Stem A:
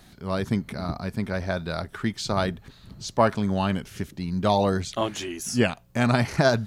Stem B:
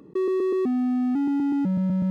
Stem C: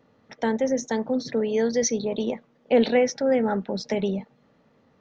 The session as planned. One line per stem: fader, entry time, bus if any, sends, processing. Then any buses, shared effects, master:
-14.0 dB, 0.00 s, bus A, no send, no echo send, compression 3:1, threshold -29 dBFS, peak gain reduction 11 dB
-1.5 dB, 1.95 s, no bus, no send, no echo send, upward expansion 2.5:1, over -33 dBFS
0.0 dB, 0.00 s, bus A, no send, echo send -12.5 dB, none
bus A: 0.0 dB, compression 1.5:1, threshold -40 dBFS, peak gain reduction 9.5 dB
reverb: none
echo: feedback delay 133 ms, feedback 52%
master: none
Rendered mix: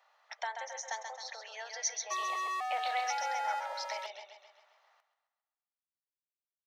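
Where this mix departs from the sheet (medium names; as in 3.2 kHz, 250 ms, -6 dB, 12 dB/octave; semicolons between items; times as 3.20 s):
stem A: muted; stem B -1.5 dB -> +6.5 dB; master: extra steep high-pass 680 Hz 48 dB/octave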